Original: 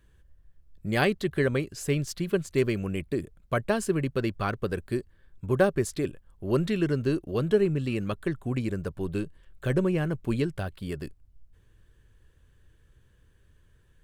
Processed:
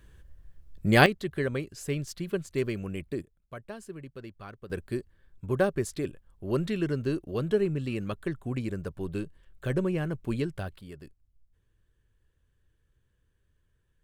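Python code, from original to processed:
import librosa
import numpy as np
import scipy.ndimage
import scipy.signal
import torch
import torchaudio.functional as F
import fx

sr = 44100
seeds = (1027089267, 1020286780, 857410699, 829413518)

y = fx.gain(x, sr, db=fx.steps((0.0, 6.0), (1.06, -4.5), (3.22, -15.5), (4.7, -3.0), (10.81, -11.0)))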